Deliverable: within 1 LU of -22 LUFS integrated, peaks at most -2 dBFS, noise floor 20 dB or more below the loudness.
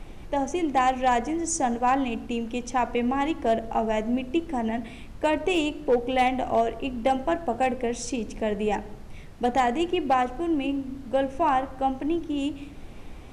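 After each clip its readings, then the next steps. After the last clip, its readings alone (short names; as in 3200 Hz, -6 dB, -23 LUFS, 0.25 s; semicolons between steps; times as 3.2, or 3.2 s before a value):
clipped 0.2%; flat tops at -14.5 dBFS; noise floor -42 dBFS; noise floor target -46 dBFS; loudness -26.0 LUFS; peak -14.5 dBFS; loudness target -22.0 LUFS
-> clip repair -14.5 dBFS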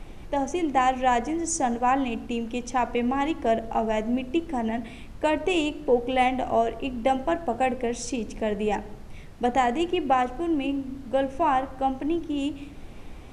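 clipped 0.0%; noise floor -42 dBFS; noise floor target -46 dBFS
-> noise print and reduce 6 dB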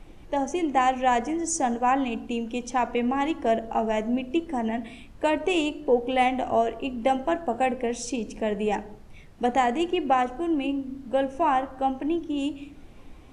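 noise floor -46 dBFS; loudness -26.0 LUFS; peak -10.5 dBFS; loudness target -22.0 LUFS
-> gain +4 dB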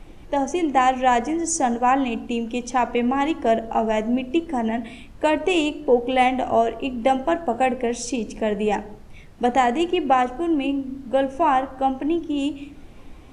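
loudness -22.0 LUFS; peak -6.5 dBFS; noise floor -42 dBFS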